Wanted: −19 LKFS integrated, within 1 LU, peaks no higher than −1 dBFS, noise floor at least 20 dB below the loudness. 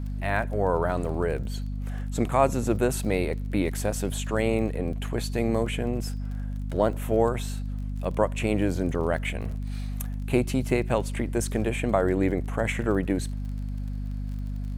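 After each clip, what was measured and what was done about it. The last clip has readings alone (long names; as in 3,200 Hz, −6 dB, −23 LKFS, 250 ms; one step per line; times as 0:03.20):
crackle rate 30 per second; mains hum 50 Hz; hum harmonics up to 250 Hz; level of the hum −29 dBFS; integrated loudness −27.5 LKFS; sample peak −7.5 dBFS; target loudness −19.0 LKFS
→ click removal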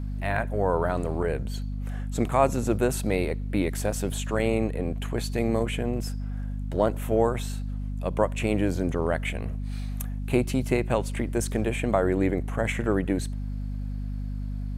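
crackle rate 0.14 per second; mains hum 50 Hz; hum harmonics up to 250 Hz; level of the hum −29 dBFS
→ hum removal 50 Hz, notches 5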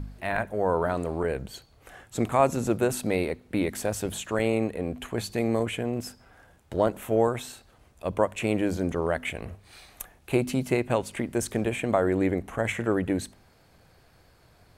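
mains hum none found; integrated loudness −27.5 LKFS; sample peak −8.0 dBFS; target loudness −19.0 LKFS
→ level +8.5 dB
brickwall limiter −1 dBFS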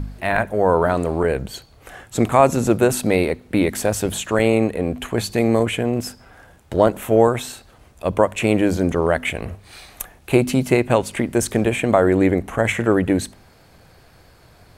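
integrated loudness −19.5 LKFS; sample peak −1.0 dBFS; background noise floor −51 dBFS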